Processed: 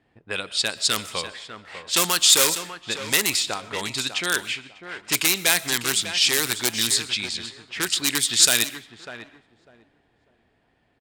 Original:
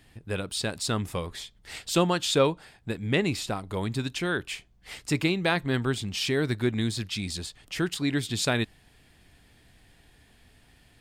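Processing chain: in parallel at -3.5 dB: wrapped overs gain 18 dB; on the sum: bell 7800 Hz +2.5 dB 0.54 oct; feedback echo 0.598 s, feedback 23%, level -11 dB; low-pass opened by the level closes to 450 Hz, open at -18.5 dBFS; tilt +4.5 dB/oct; on a send at -19 dB: reverb RT60 0.45 s, pre-delay 80 ms; on the sum: mismatched tape noise reduction encoder only; gain -1 dB

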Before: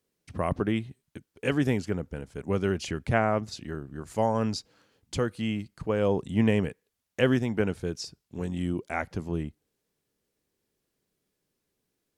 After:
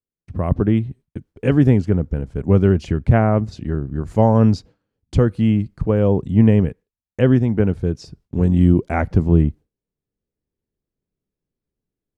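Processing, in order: tilt -3.5 dB/oct; gate with hold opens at -42 dBFS; AGC; gain -1 dB

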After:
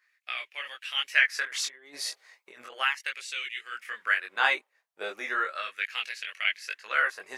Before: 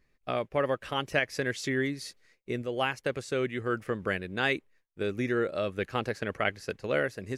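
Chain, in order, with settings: low shelf 96 Hz -9.5 dB; 1.45–2.7 negative-ratio compressor -38 dBFS, ratio -0.5; chorus voices 2, 0.94 Hz, delay 21 ms, depth 3 ms; LFO high-pass sine 0.36 Hz 730–2700 Hz; gain +5.5 dB

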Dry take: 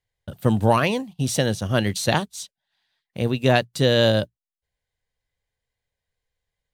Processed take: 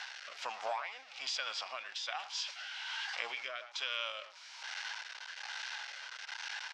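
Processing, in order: zero-crossing step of -31 dBFS; Chebyshev band-pass 1000–6500 Hz, order 3; compressor 8:1, threshold -36 dBFS, peak gain reduction 17.5 dB; formant shift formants -3 st; rotary speaker horn 1.2 Hz; speakerphone echo 0.11 s, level -16 dB; sustainer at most 110 dB/s; gain +2.5 dB

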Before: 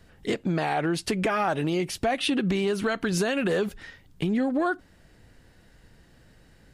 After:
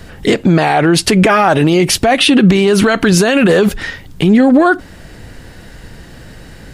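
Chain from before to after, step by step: maximiser +22 dB; gain -1 dB

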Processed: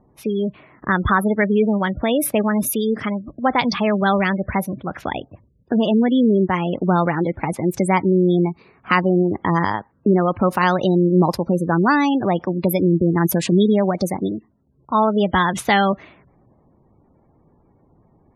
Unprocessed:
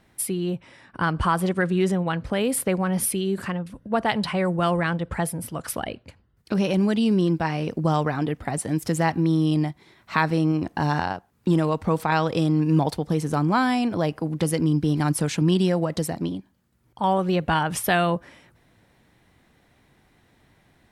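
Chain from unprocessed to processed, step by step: varispeed +14%; low-pass opened by the level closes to 860 Hz, open at -19.5 dBFS; spectral gate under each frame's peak -25 dB strong; gain +5 dB

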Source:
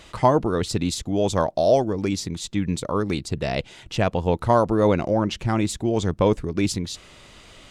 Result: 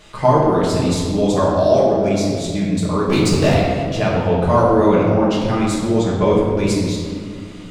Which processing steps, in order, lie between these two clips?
3.08–3.54 sample leveller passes 3; reverb RT60 2.1 s, pre-delay 5 ms, DRR -6.5 dB; gain -2.5 dB

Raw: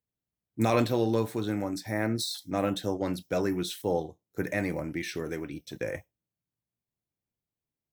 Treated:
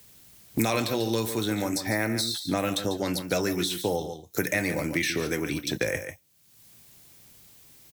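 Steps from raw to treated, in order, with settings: high shelf 2100 Hz +10.5 dB; echo 0.142 s -12 dB; three-band squash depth 100%

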